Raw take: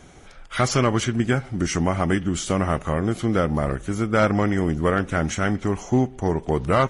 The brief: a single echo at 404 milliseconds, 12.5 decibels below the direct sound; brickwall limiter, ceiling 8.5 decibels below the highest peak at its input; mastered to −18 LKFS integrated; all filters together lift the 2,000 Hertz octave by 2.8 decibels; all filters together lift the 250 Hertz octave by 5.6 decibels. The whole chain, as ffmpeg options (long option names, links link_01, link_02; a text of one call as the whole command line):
ffmpeg -i in.wav -af "equalizer=frequency=250:width_type=o:gain=7,equalizer=frequency=2000:width_type=o:gain=3.5,alimiter=limit=-13dB:level=0:latency=1,aecho=1:1:404:0.237,volume=5dB" out.wav